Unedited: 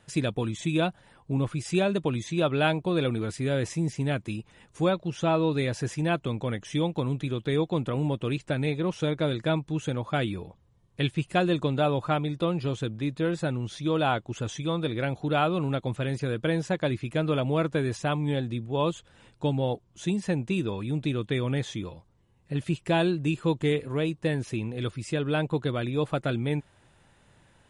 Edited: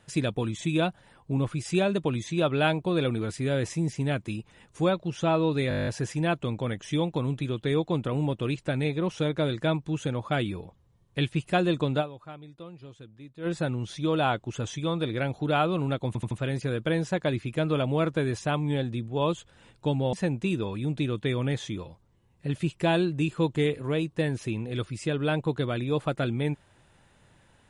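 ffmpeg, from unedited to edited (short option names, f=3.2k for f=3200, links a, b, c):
-filter_complex "[0:a]asplit=16[a][b][c][d][e][f][g][h][i][j][k][l][m][n][o][p];[a]atrim=end=5.712[q];[b]atrim=start=5.688:end=5.712[r];[c]atrim=start=5.688:end=5.712[s];[d]atrim=start=5.688:end=5.712[t];[e]atrim=start=5.688:end=5.712[u];[f]atrim=start=5.688:end=5.712[v];[g]atrim=start=5.688:end=5.712[w];[h]atrim=start=5.688:end=5.712[x];[i]atrim=start=5.688:end=5.712[y];[j]atrim=start=5.688:end=12.11,asetpts=PTS-STARTPTS,afade=t=out:st=6.132:d=0.29:c=exp:silence=0.141254[z];[k]atrim=start=12.11:end=13,asetpts=PTS-STARTPTS,volume=-17dB[aa];[l]atrim=start=13:end=15.972,asetpts=PTS-STARTPTS,afade=t=in:d=0.29:c=exp:silence=0.141254[ab];[m]atrim=start=15.888:end=15.972[ac];[n]atrim=start=15.888:end=15.972[ad];[o]atrim=start=15.888:end=19.712[ae];[p]atrim=start=20.188[af];[q][r]acrossfade=d=0.004:c1=hsin:c2=hsin[ag];[ag][s]acrossfade=d=0.004:c1=hsin:c2=hsin[ah];[ah][t]acrossfade=d=0.004:c1=hsin:c2=hsin[ai];[ai][u]acrossfade=d=0.004:c1=hsin:c2=hsin[aj];[aj][v]acrossfade=d=0.004:c1=hsin:c2=hsin[ak];[ak][w]acrossfade=d=0.004:c1=hsin:c2=hsin[al];[al][x]acrossfade=d=0.004:c1=hsin:c2=hsin[am];[am][y]acrossfade=d=0.004:c1=hsin:c2=hsin[an];[z][aa][ab]concat=n=3:v=0:a=1[ao];[an][ao]acrossfade=d=0.004:c1=hsin:c2=hsin[ap];[ap][ac]acrossfade=d=0.004:c1=hsin:c2=hsin[aq];[aq][ad]acrossfade=d=0.004:c1=hsin:c2=hsin[ar];[ar][ae]acrossfade=d=0.004:c1=hsin:c2=hsin[as];[as][af]acrossfade=d=0.004:c1=hsin:c2=hsin"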